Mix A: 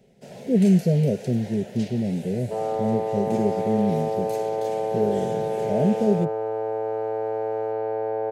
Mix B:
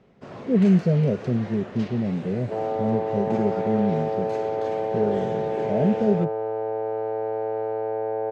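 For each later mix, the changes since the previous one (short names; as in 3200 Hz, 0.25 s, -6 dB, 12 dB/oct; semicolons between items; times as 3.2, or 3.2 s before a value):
first sound: remove fixed phaser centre 310 Hz, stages 6; master: add air absorption 140 m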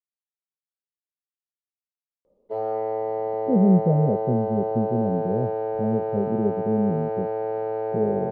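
speech: entry +3.00 s; first sound: muted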